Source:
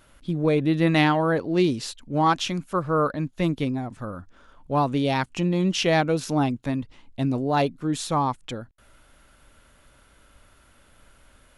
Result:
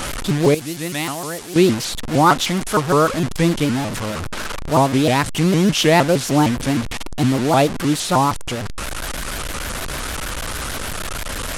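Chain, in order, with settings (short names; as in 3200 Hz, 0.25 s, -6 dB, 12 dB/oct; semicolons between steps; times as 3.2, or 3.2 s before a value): delta modulation 64 kbps, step -26.5 dBFS; 0.54–1.56 pre-emphasis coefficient 0.8; shaped vibrato saw up 6.5 Hz, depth 250 cents; gain +7 dB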